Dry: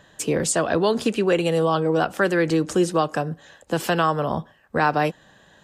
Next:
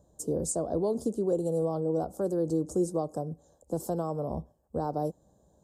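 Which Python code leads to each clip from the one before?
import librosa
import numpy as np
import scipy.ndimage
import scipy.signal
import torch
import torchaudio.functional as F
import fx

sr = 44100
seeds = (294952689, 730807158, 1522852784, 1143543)

y = scipy.signal.sosfilt(scipy.signal.cheby1(2, 1.0, [600.0, 7800.0], 'bandstop', fs=sr, output='sos'), x)
y = fx.peak_eq(y, sr, hz=65.0, db=14.0, octaves=0.45)
y = F.gain(torch.from_numpy(y), -7.5).numpy()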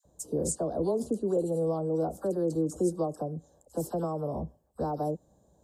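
y = fx.dispersion(x, sr, late='lows', ms=53.0, hz=1200.0)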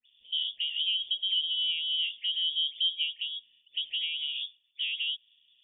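y = fx.freq_invert(x, sr, carrier_hz=3500)
y = F.gain(torch.from_numpy(y), -1.5).numpy()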